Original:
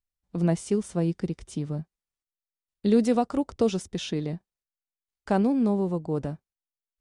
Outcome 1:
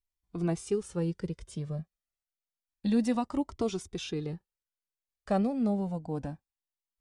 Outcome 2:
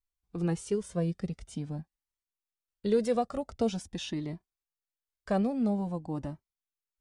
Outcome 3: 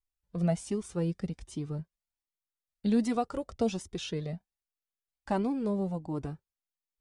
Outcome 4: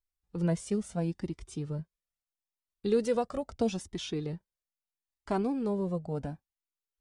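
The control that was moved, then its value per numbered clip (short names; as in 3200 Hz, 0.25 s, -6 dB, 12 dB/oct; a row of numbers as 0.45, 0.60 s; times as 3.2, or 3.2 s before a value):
cascading flanger, rate: 0.29, 0.47, 1.3, 0.76 Hz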